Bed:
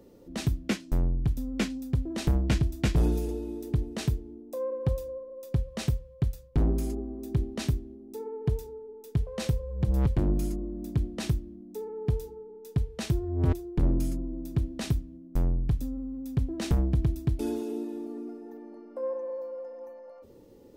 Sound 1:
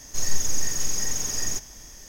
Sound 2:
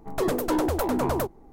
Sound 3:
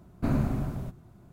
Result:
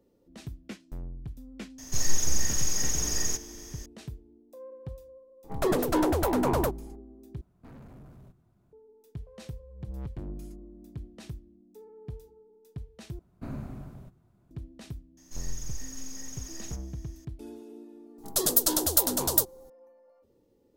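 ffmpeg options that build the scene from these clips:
-filter_complex "[1:a]asplit=2[s0][s1];[2:a]asplit=2[s2][s3];[3:a]asplit=2[s4][s5];[0:a]volume=0.224[s6];[s4]asoftclip=type=tanh:threshold=0.0237[s7];[s3]aexciter=amount=9.2:drive=5.8:freq=3400[s8];[s6]asplit=3[s9][s10][s11];[s9]atrim=end=7.414[s12];[s7]atrim=end=1.32,asetpts=PTS-STARTPTS,volume=0.211[s13];[s10]atrim=start=8.726:end=13.194[s14];[s5]atrim=end=1.32,asetpts=PTS-STARTPTS,volume=0.266[s15];[s11]atrim=start=14.506[s16];[s0]atrim=end=2.08,asetpts=PTS-STARTPTS,volume=0.841,afade=t=in:d=0.004:c=hsin,afade=t=out:st=2.076:d=0.004:c=hsin,adelay=1780[s17];[s2]atrim=end=1.52,asetpts=PTS-STARTPTS,volume=0.944,afade=t=in:d=0.004:c=hsin,afade=t=out:st=1.516:d=0.004:c=hsin,adelay=5440[s18];[s1]atrim=end=2.08,asetpts=PTS-STARTPTS,volume=0.178,afade=t=in:d=0.004:c=hsin,afade=t=out:st=2.076:d=0.004:c=hsin,adelay=15170[s19];[s8]atrim=end=1.52,asetpts=PTS-STARTPTS,volume=0.422,afade=t=in:d=0.004:c=hsin,afade=t=out:st=1.516:d=0.004:c=hsin,adelay=18180[s20];[s12][s13]acrossfade=d=0.004:c1=hsin:c2=hsin[s21];[s21][s14]acrossfade=d=0.004:c1=hsin:c2=hsin[s22];[s22][s15]acrossfade=d=0.004:c1=hsin:c2=hsin[s23];[s23][s16]acrossfade=d=0.004:c1=hsin:c2=hsin[s24];[s24][s17][s18][s19][s20]amix=inputs=5:normalize=0"

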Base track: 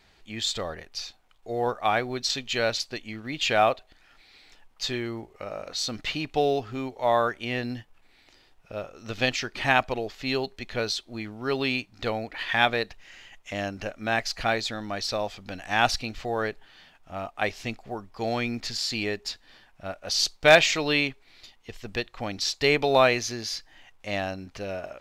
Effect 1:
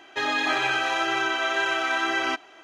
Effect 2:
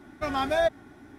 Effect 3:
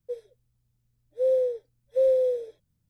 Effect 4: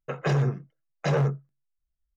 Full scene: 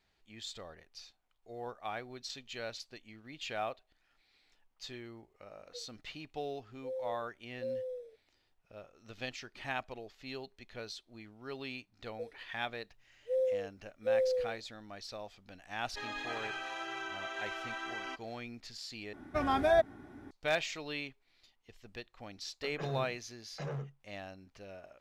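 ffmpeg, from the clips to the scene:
-filter_complex "[3:a]asplit=2[s0][s1];[0:a]volume=0.158[s2];[2:a]highshelf=f=2300:g=-8[s3];[s2]asplit=2[s4][s5];[s4]atrim=end=19.134[s6];[s3]atrim=end=1.18,asetpts=PTS-STARTPTS,volume=0.841[s7];[s5]atrim=start=20.306[s8];[s0]atrim=end=2.89,asetpts=PTS-STARTPTS,volume=0.141,afade=t=in:d=0.004:c=hsin,afade=t=out:st=2.886:d=0.004:c=hsin,adelay=249165S[s9];[s1]atrim=end=2.89,asetpts=PTS-STARTPTS,volume=0.376,afade=t=in:d=0.004:c=hsin,afade=t=out:st=2.886:d=0.004:c=hsin,adelay=12100[s10];[1:a]atrim=end=2.63,asetpts=PTS-STARTPTS,volume=0.158,afade=t=in:d=0.004:c=hsin,afade=t=out:st=2.626:d=0.004:c=hsin,adelay=15800[s11];[4:a]atrim=end=2.16,asetpts=PTS-STARTPTS,volume=0.158,afade=t=in:d=0.004:c=hsin,afade=t=out:st=2.156:d=0.004:c=hsin,adelay=22540[s12];[s6][s7]acrossfade=d=0.004:c1=hsin:c2=hsin[s13];[s13][s8]acrossfade=d=0.004:c1=hsin:c2=hsin[s14];[s14][s9][s10][s11][s12]amix=inputs=5:normalize=0"

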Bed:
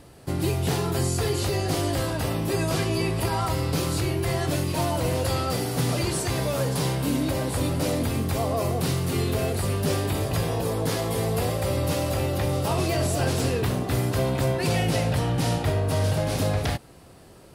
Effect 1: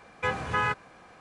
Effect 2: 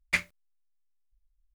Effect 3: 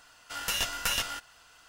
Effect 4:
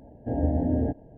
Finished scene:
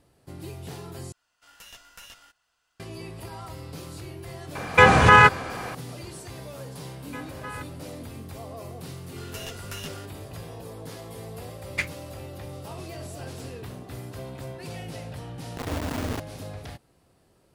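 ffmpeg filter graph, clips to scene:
-filter_complex "[3:a]asplit=2[s0][s1];[1:a]asplit=2[s2][s3];[0:a]volume=0.2[s4];[s2]alimiter=level_in=10:limit=0.891:release=50:level=0:latency=1[s5];[4:a]acrusher=bits=3:mix=0:aa=0.000001[s6];[s4]asplit=2[s7][s8];[s7]atrim=end=1.124[s9];[s0]atrim=end=1.68,asetpts=PTS-STARTPTS,volume=0.133[s10];[s8]atrim=start=2.796[s11];[s5]atrim=end=1.2,asetpts=PTS-STARTPTS,volume=0.794,afade=t=in:d=0.004:c=hsin,afade=t=out:st=1.196:d=0.004:c=hsin,adelay=4550[s12];[s3]atrim=end=1.2,asetpts=PTS-STARTPTS,volume=0.266,afade=t=in:d=0.004:c=hsin,afade=t=out:st=1.196:d=0.004:c=hsin,adelay=304290S[s13];[s1]atrim=end=1.68,asetpts=PTS-STARTPTS,volume=0.316,afade=t=in:d=0.004:c=hsin,afade=t=out:st=1.676:d=0.004:c=hsin,adelay=8860[s14];[2:a]atrim=end=1.54,asetpts=PTS-STARTPTS,volume=0.841,afade=t=in:d=0.004:c=hsin,afade=t=out:st=1.536:d=0.004:c=hsin,adelay=11650[s15];[s6]atrim=end=1.17,asetpts=PTS-STARTPTS,volume=0.422,afade=t=in:d=0.004:c=hsin,afade=t=out:st=1.166:d=0.004:c=hsin,adelay=15290[s16];[s9][s10]acrossfade=d=0.004:c1=hsin:c2=hsin[s17];[s17][s11]acrossfade=d=0.004:c1=hsin:c2=hsin[s18];[s18][s12][s13][s14][s15][s16]amix=inputs=6:normalize=0"

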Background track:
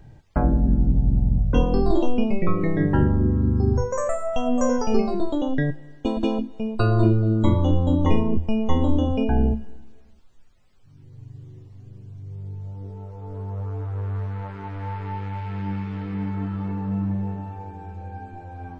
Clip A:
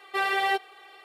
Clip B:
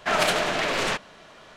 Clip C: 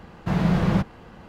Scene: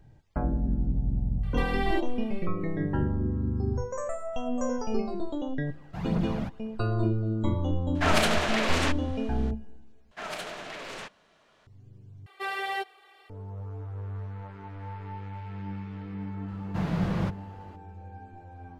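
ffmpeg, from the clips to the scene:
-filter_complex "[1:a]asplit=2[s0][s1];[3:a]asplit=2[s2][s3];[2:a]asplit=2[s4][s5];[0:a]volume=0.376[s6];[s0]acrossover=split=1300|4700[s7][s8][s9];[s7]acompressor=threshold=0.0178:ratio=2[s10];[s8]acompressor=threshold=0.0158:ratio=1.5[s11];[s9]acompressor=threshold=0.00224:ratio=5[s12];[s10][s11][s12]amix=inputs=3:normalize=0[s13];[s2]aphaser=in_gain=1:out_gain=1:delay=1.6:decay=0.56:speed=2:type=triangular[s14];[s6]asplit=3[s15][s16][s17];[s15]atrim=end=10.114[s18];[s5]atrim=end=1.56,asetpts=PTS-STARTPTS,volume=0.188[s19];[s16]atrim=start=11.666:end=12.264[s20];[s1]atrim=end=1.04,asetpts=PTS-STARTPTS,volume=0.473[s21];[s17]atrim=start=13.296[s22];[s13]atrim=end=1.04,asetpts=PTS-STARTPTS,volume=0.631,afade=t=in:d=0.004:c=hsin,afade=t=out:st=1.036:d=0.004:c=hsin,adelay=1430[s23];[s14]atrim=end=1.28,asetpts=PTS-STARTPTS,volume=0.211,afade=t=in:d=0.004:c=hsin,afade=t=out:st=1.276:d=0.004:c=hsin,adelay=5670[s24];[s4]atrim=end=1.56,asetpts=PTS-STARTPTS,volume=0.75,afade=t=in:d=0.004:c=hsin,afade=t=out:st=1.556:d=0.004:c=hsin,adelay=7950[s25];[s3]atrim=end=1.28,asetpts=PTS-STARTPTS,volume=0.422,afade=t=in:d=0.004:c=hsin,afade=t=out:st=1.276:d=0.004:c=hsin,adelay=16480[s26];[s18][s19]acrossfade=d=0.004:c1=hsin:c2=hsin[s27];[s27][s20]acrossfade=d=0.004:c1=hsin:c2=hsin[s28];[s28][s21]acrossfade=d=0.004:c1=hsin:c2=hsin[s29];[s29][s22]acrossfade=d=0.004:c1=hsin:c2=hsin[s30];[s30][s23][s24][s25][s26]amix=inputs=5:normalize=0"

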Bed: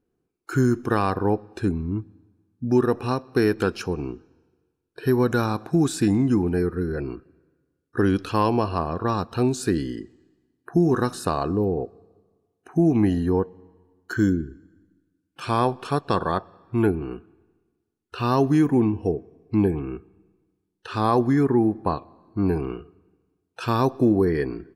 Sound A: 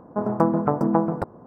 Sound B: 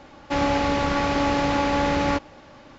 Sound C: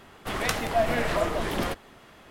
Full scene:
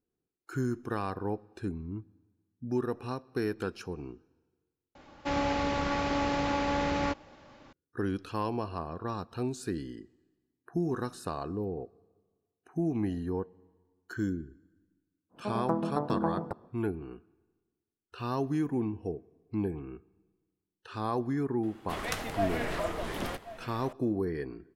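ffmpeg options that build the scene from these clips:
-filter_complex "[0:a]volume=0.266[s0];[3:a]aecho=1:1:1082:0.168[s1];[s0]asplit=2[s2][s3];[s2]atrim=end=4.954[s4];[2:a]atrim=end=2.78,asetpts=PTS-STARTPTS,volume=0.422[s5];[s3]atrim=start=7.726[s6];[1:a]atrim=end=1.46,asetpts=PTS-STARTPTS,volume=0.316,afade=t=in:d=0.1,afade=t=out:st=1.36:d=0.1,adelay=15290[s7];[s1]atrim=end=2.3,asetpts=PTS-STARTPTS,volume=0.447,afade=t=in:d=0.004:c=hsin,afade=t=out:st=2.296:d=0.004:c=hsin,adelay=21630[s8];[s4][s5]acrossfade=d=0.004:c1=hsin:c2=hsin[s9];[s9][s6]acrossfade=d=0.004:c1=hsin:c2=hsin[s10];[s10][s7][s8]amix=inputs=3:normalize=0"

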